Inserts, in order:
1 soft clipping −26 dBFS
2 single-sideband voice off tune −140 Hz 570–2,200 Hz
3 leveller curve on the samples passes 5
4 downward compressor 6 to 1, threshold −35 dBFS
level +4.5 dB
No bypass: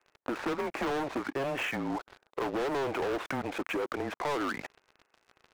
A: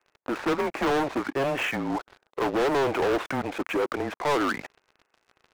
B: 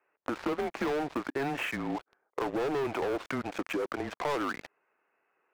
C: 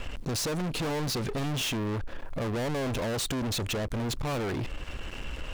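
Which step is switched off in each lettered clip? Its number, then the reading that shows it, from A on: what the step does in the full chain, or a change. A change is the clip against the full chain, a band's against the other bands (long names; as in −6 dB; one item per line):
4, average gain reduction 5.0 dB
1, distortion level −10 dB
2, 8 kHz band +13.5 dB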